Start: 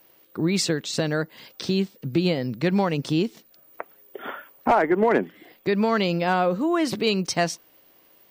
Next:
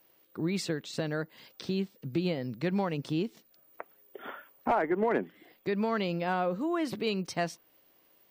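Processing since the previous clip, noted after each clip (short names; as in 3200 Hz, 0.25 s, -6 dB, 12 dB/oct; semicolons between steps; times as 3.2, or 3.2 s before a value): dynamic EQ 6400 Hz, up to -6 dB, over -43 dBFS, Q 0.87; gain -8 dB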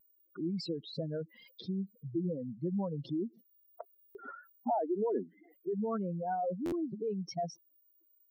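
spectral contrast raised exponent 3.8; vibrato 0.31 Hz 7.8 cents; stuck buffer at 4.08/6.65, samples 512, times 5; gain -3.5 dB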